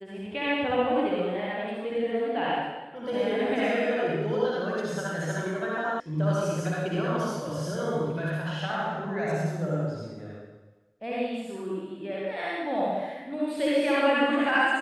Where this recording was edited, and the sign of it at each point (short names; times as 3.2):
6 sound cut off